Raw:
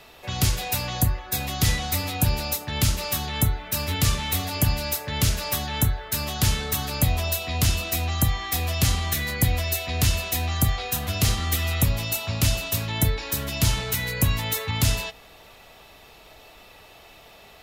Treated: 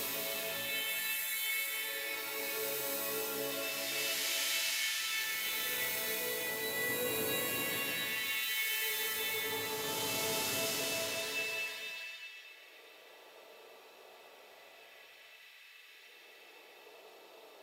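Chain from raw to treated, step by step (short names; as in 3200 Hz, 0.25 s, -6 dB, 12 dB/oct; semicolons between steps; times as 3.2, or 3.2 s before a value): LFO high-pass square 1.4 Hz 410–2000 Hz; Paulstretch 5×, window 0.50 s, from 12.76; gain -8.5 dB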